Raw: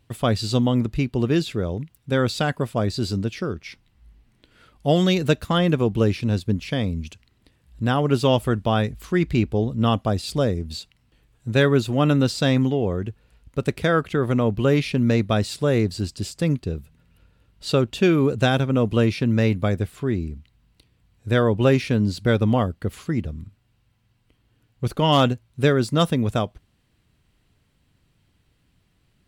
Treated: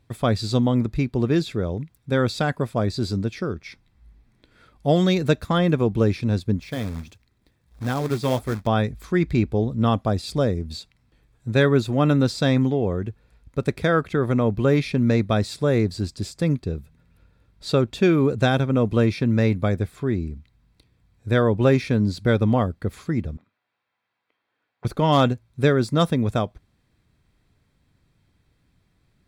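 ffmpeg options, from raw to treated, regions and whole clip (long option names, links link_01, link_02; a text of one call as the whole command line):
ffmpeg -i in.wav -filter_complex "[0:a]asettb=1/sr,asplit=3[link_01][link_02][link_03];[link_01]atrim=end=6.614[link_04];[link_02]atrim=start=6.61:end=8.67,asetpts=PTS-STARTPTS,afade=type=in:duration=0.004:curve=qsin,afade=type=out:start_time=2.056:duration=0.004:curve=qsin,flanger=delay=0.4:depth=8.1:regen=-70:speed=1.5:shape=sinusoidal,acrusher=bits=3:mode=log:mix=0:aa=0.000001[link_05];[link_03]atrim=start=8.666[link_06];[link_04][link_05]acrossfade=duration=0.004:curve1=hsin:curve2=qsin[link_07];[link_07][link_06]acrossfade=duration=0.004:curve1=qsin:curve2=hsin,asettb=1/sr,asplit=3[link_08][link_09][link_10];[link_08]atrim=end=23.374[link_11];[link_09]atrim=start=23.37:end=24.85,asetpts=PTS-STARTPTS,afade=type=in:duration=0.004:curve=qsin,afade=type=out:start_time=1.476:duration=0.004:curve=qsin,volume=28.5dB,asoftclip=hard,volume=-28.5dB,highpass=660,lowpass=3200[link_12];[link_10]atrim=start=24.846[link_13];[link_11][link_12]acrossfade=duration=0.004:curve1=hsin:curve2=qsin[link_14];[link_14][link_13]acrossfade=duration=0.004:curve1=qsin:curve2=hsin,highshelf=frequency=6200:gain=-5.5,bandreject=frequency=2900:width=5.5" out.wav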